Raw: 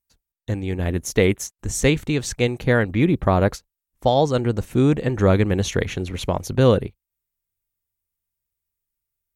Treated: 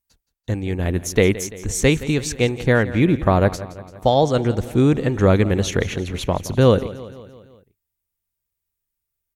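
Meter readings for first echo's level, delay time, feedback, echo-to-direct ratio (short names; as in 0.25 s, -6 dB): -16.5 dB, 0.17 s, 57%, -15.0 dB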